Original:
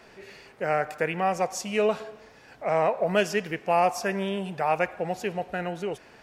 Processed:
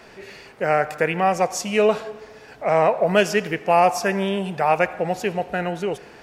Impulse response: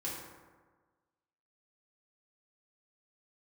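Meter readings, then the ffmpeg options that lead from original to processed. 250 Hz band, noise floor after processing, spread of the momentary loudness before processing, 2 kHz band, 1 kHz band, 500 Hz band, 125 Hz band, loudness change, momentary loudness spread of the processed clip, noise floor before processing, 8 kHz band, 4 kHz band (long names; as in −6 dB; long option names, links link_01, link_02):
+6.0 dB, −46 dBFS, 11 LU, +6.0 dB, +6.0 dB, +6.0 dB, +6.0 dB, +6.0 dB, 11 LU, −53 dBFS, +6.0 dB, +6.0 dB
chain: -filter_complex "[0:a]asplit=2[link_01][link_02];[1:a]atrim=start_sample=2205,asetrate=38808,aresample=44100,adelay=75[link_03];[link_02][link_03]afir=irnorm=-1:irlink=0,volume=-23.5dB[link_04];[link_01][link_04]amix=inputs=2:normalize=0,volume=6dB"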